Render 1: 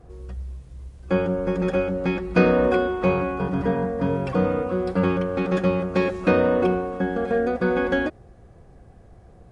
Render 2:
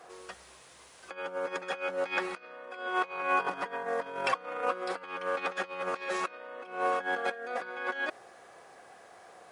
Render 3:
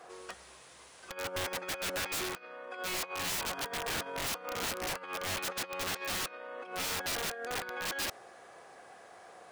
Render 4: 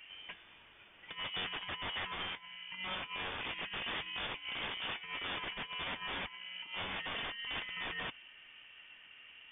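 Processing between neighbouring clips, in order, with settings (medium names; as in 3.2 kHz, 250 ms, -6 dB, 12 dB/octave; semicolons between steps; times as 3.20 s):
compressor with a negative ratio -28 dBFS, ratio -0.5; high-pass 950 Hz 12 dB/octave; trim +5 dB
integer overflow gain 29.5 dB
rattle on loud lows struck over -51 dBFS, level -36 dBFS; flange 1.1 Hz, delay 2.4 ms, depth 7.1 ms, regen +71%; frequency inversion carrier 3.5 kHz; trim +1.5 dB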